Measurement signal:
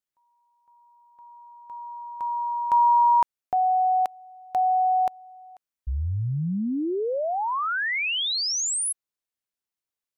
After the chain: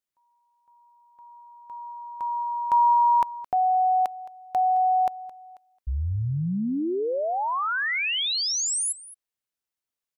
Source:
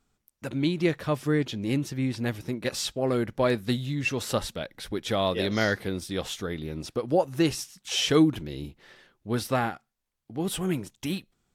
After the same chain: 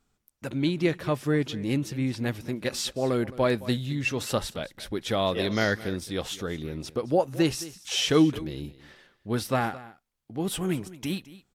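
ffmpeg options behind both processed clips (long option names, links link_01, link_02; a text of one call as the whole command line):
ffmpeg -i in.wav -af "aecho=1:1:217:0.126" out.wav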